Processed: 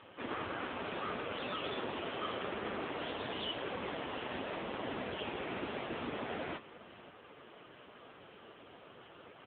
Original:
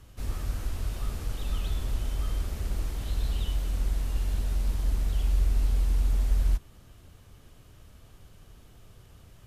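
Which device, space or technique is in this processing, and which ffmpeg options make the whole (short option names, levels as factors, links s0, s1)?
satellite phone: -af "highpass=360,lowpass=3200,aecho=1:1:502:0.112,volume=4.22" -ar 8000 -c:a libopencore_amrnb -b:a 5900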